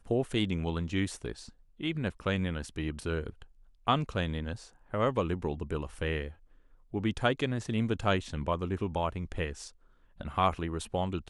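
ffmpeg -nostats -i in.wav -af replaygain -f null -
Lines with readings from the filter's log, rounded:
track_gain = +12.3 dB
track_peak = 0.166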